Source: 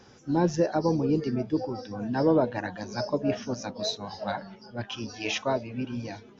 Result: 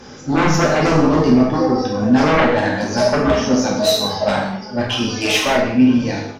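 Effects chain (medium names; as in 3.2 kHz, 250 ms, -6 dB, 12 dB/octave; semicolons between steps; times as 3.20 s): sine folder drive 13 dB, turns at -10.5 dBFS; doubling 47 ms -8.5 dB; gated-style reverb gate 230 ms falling, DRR -3 dB; trim -5 dB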